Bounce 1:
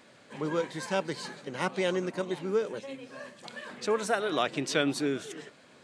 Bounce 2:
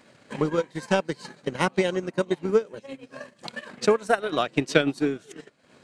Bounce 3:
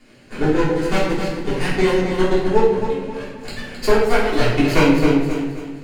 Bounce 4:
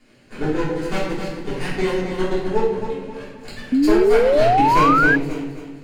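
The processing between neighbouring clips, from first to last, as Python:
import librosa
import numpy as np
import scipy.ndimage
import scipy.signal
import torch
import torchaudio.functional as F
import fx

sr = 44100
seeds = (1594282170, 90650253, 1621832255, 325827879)

y1 = fx.low_shelf(x, sr, hz=190.0, db=5.5)
y1 = fx.notch(y1, sr, hz=3500.0, q=21.0)
y1 = fx.transient(y1, sr, attack_db=11, sustain_db=-11)
y2 = fx.lower_of_two(y1, sr, delay_ms=0.43)
y2 = fx.echo_feedback(y2, sr, ms=265, feedback_pct=38, wet_db=-8.0)
y2 = fx.room_shoebox(y2, sr, seeds[0], volume_m3=250.0, walls='mixed', distance_m=3.3)
y2 = F.gain(torch.from_numpy(y2), -3.0).numpy()
y3 = fx.spec_paint(y2, sr, seeds[1], shape='rise', start_s=3.72, length_s=1.44, low_hz=250.0, high_hz=1700.0, level_db=-11.0)
y3 = F.gain(torch.from_numpy(y3), -4.5).numpy()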